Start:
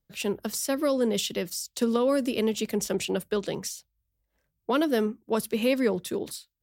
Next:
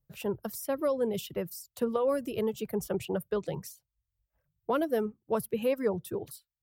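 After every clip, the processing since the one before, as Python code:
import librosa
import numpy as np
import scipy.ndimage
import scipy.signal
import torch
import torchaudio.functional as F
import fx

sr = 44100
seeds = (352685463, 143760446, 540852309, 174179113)

y = fx.graphic_eq(x, sr, hz=(125, 250, 2000, 4000, 8000), db=(9, -9, -7, -10, -5))
y = fx.dereverb_blind(y, sr, rt60_s=0.91)
y = fx.dynamic_eq(y, sr, hz=6600.0, q=1.3, threshold_db=-56.0, ratio=4.0, max_db=-7)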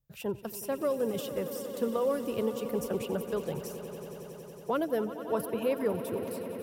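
y = fx.echo_swell(x, sr, ms=92, loudest=5, wet_db=-15.0)
y = y * 10.0 ** (-1.5 / 20.0)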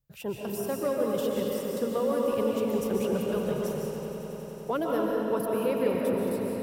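y = fx.rev_freeverb(x, sr, rt60_s=2.4, hf_ratio=0.7, predelay_ms=100, drr_db=-1.5)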